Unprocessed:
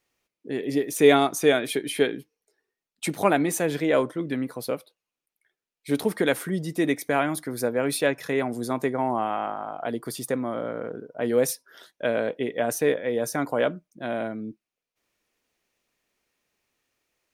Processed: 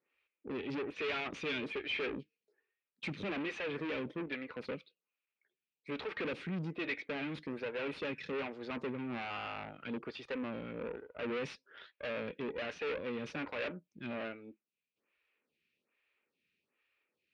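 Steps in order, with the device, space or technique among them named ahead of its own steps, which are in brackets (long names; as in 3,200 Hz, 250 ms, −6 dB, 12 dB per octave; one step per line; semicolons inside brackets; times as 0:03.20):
vibe pedal into a guitar amplifier (phaser with staggered stages 1.2 Hz; tube saturation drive 35 dB, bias 0.65; loudspeaker in its box 90–3,900 Hz, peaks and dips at 120 Hz −6 dB, 310 Hz −3 dB, 700 Hz −10 dB, 990 Hz −4 dB, 2,500 Hz +8 dB)
level +1.5 dB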